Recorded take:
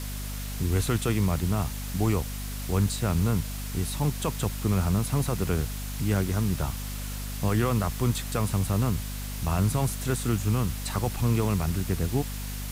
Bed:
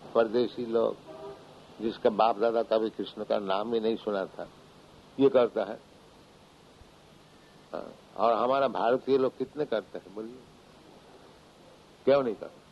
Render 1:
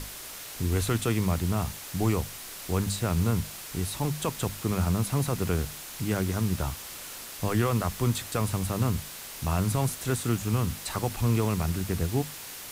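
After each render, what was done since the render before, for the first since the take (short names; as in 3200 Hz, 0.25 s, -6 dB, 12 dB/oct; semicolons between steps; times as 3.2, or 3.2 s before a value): notches 50/100/150/200/250 Hz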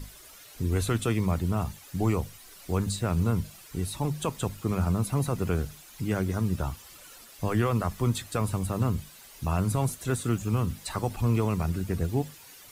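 denoiser 12 dB, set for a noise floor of -41 dBFS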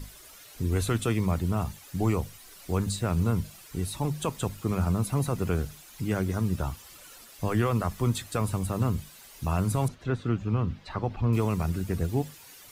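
9.88–11.33 air absorption 240 m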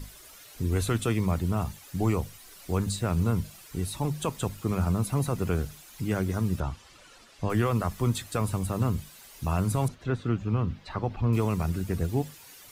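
6.6–7.5 air absorption 79 m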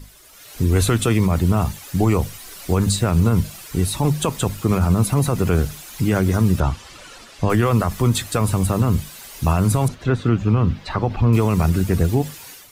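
AGC gain up to 13 dB; limiter -8 dBFS, peak gain reduction 5.5 dB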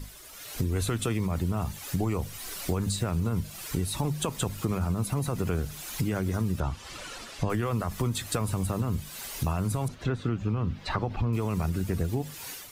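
compressor 4:1, threshold -27 dBFS, peak gain reduction 13 dB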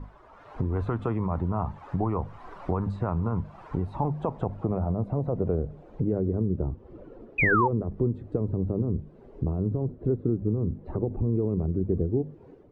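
low-pass sweep 990 Hz -> 400 Hz, 3.53–6.6; 7.38–7.68 painted sound fall 830–2600 Hz -23 dBFS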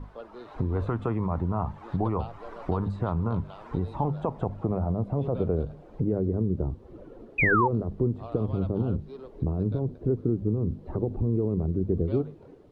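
add bed -18.5 dB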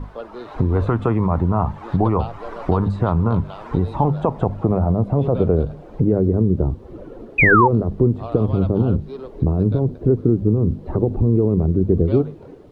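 gain +9.5 dB; limiter -2 dBFS, peak gain reduction 0.5 dB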